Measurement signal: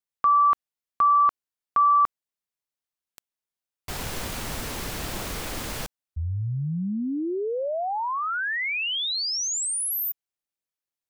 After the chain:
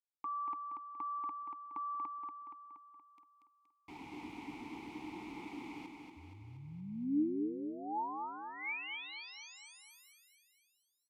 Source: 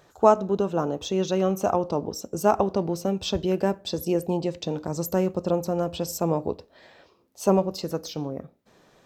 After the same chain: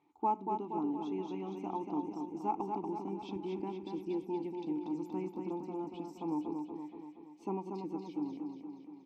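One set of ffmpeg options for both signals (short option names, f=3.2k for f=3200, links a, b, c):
-filter_complex "[0:a]asplit=3[a][b][c];[a]bandpass=f=300:t=q:w=8,volume=0dB[d];[b]bandpass=f=870:t=q:w=8,volume=-6dB[e];[c]bandpass=f=2.24k:t=q:w=8,volume=-9dB[f];[d][e][f]amix=inputs=3:normalize=0,asplit=2[g][h];[h]aecho=0:1:236|472|708|944|1180|1416|1652|1888:0.562|0.321|0.183|0.104|0.0594|0.0338|0.0193|0.011[i];[g][i]amix=inputs=2:normalize=0,volume=-1.5dB"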